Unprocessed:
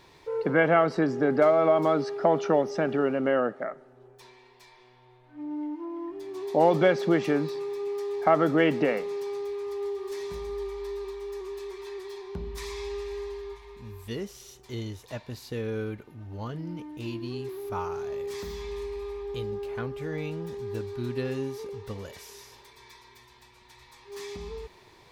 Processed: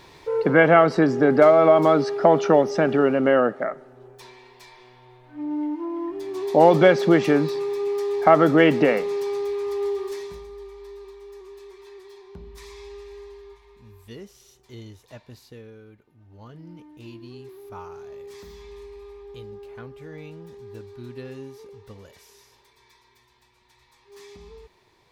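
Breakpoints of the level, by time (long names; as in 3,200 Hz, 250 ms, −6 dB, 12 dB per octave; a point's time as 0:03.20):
0:10.00 +6.5 dB
0:10.49 −6 dB
0:15.39 −6 dB
0:15.81 −15.5 dB
0:16.68 −6.5 dB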